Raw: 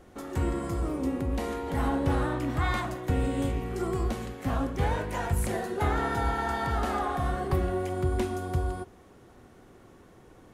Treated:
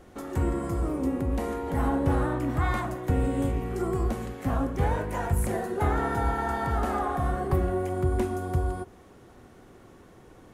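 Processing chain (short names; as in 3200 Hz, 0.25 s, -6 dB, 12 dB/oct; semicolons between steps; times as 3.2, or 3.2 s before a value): dynamic EQ 3900 Hz, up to -8 dB, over -52 dBFS, Q 0.73; gain +2 dB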